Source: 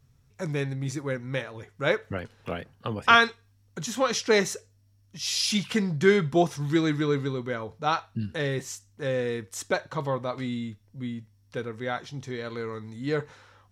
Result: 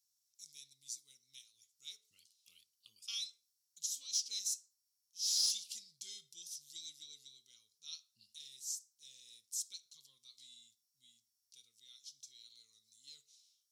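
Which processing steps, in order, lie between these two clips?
inverse Chebyshev high-pass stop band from 1.8 kHz, stop band 50 dB; saturation -21 dBFS, distortion -21 dB; on a send: reverberation, pre-delay 4 ms, DRR 15 dB; on the sum: trim -2 dB

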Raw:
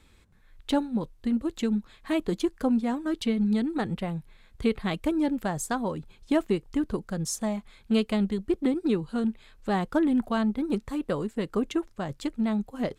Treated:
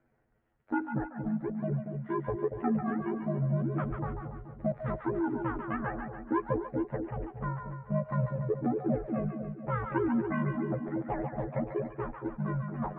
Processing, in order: rotating-head pitch shifter +12 st; mistuned SSB -270 Hz 270–2100 Hz; two-band feedback delay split 670 Hz, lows 234 ms, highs 143 ms, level -5.5 dB; trim -4.5 dB

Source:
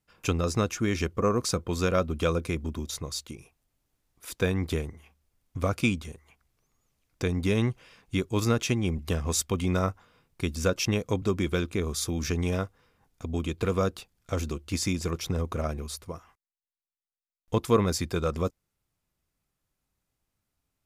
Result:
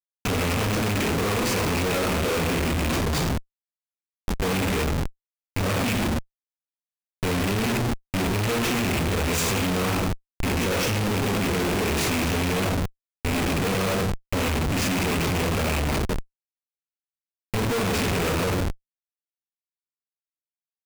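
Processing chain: rattle on loud lows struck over -31 dBFS, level -18 dBFS; gated-style reverb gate 340 ms falling, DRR -4 dB; Schmitt trigger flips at -27.5 dBFS

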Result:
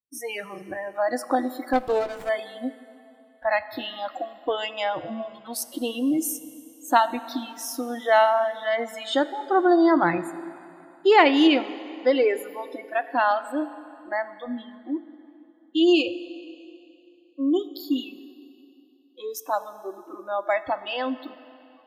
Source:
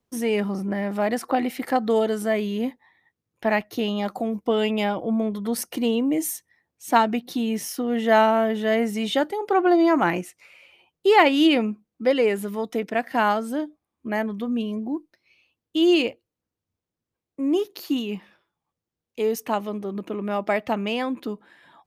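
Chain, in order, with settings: spectral noise reduction 29 dB; plate-style reverb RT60 2.9 s, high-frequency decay 0.85×, DRR 13.5 dB; 1.73–2.29 s: sliding maximum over 9 samples

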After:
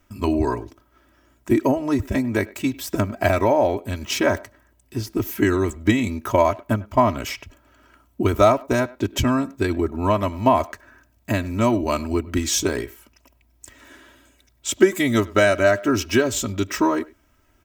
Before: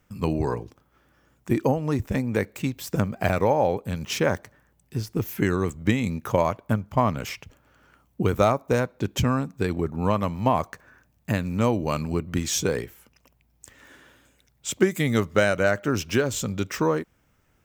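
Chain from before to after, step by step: comb 3.1 ms, depth 87%; speakerphone echo 100 ms, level -21 dB; trim +2 dB

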